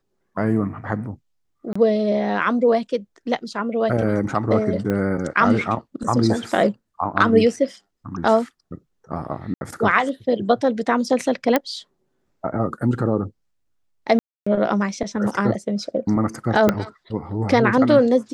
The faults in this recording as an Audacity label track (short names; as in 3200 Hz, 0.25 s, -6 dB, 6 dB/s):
1.730000	1.750000	gap 25 ms
4.900000	4.900000	pop -12 dBFS
9.540000	9.610000	gap 71 ms
11.560000	11.560000	pop -4 dBFS
14.190000	14.460000	gap 0.275 s
16.690000	16.690000	pop -4 dBFS